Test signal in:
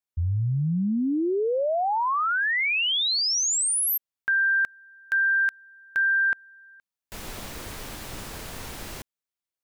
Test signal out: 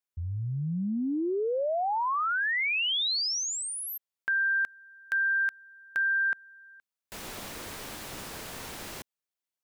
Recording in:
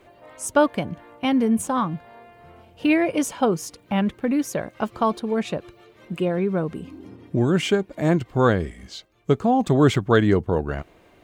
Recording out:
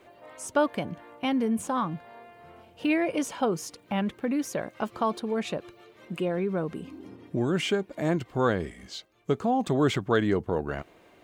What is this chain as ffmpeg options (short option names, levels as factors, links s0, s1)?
-filter_complex "[0:a]acrossover=split=5400[s0][s1];[s1]acompressor=threshold=0.0158:ratio=4:attack=1:release=60[s2];[s0][s2]amix=inputs=2:normalize=0,lowshelf=f=100:g=-11.5,asplit=2[s3][s4];[s4]acompressor=threshold=0.0316:ratio=6:attack=15:release=22:knee=6,volume=1[s5];[s3][s5]amix=inputs=2:normalize=0,volume=0.422"